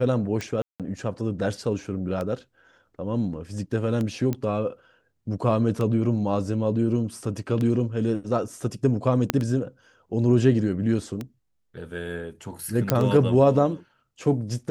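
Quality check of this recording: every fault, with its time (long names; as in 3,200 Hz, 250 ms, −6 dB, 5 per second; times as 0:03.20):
scratch tick 33 1/3 rpm −17 dBFS
0:00.62–0:00.80: drop-out 177 ms
0:04.33: click −15 dBFS
0:09.30: click −5 dBFS
0:12.90: click −5 dBFS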